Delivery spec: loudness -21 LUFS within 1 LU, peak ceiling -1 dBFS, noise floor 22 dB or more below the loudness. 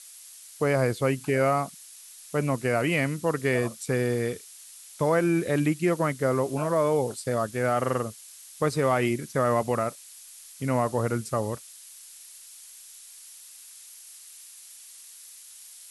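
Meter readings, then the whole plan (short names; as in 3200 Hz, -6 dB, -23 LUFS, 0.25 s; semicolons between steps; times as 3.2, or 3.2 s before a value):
noise floor -48 dBFS; noise floor target -49 dBFS; loudness -26.5 LUFS; peak -12.0 dBFS; loudness target -21.0 LUFS
-> denoiser 6 dB, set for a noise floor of -48 dBFS; gain +5.5 dB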